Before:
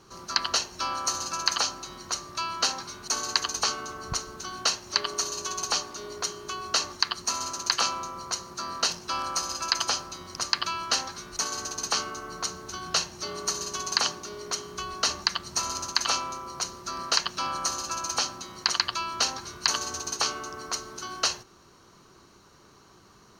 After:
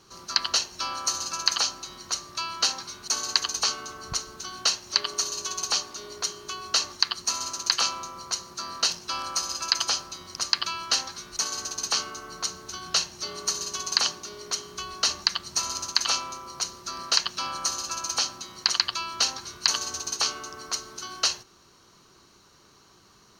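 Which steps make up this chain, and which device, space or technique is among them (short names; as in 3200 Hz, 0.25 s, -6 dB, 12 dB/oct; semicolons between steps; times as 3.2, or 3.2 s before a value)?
presence and air boost (bell 4000 Hz +5.5 dB 1.9 oct; high shelf 10000 Hz +6 dB); gain -3.5 dB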